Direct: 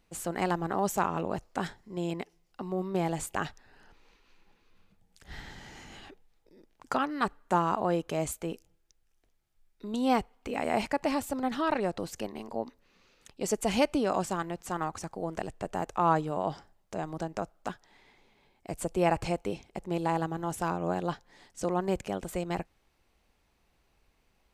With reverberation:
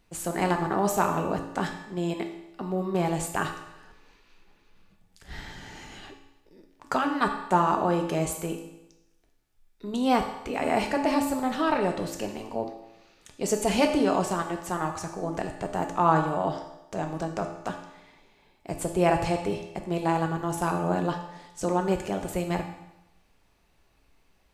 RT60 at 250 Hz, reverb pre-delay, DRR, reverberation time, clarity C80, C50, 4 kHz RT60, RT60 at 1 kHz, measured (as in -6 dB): 0.90 s, 3 ms, 3.0 dB, 0.90 s, 9.5 dB, 7.0 dB, 0.90 s, 0.90 s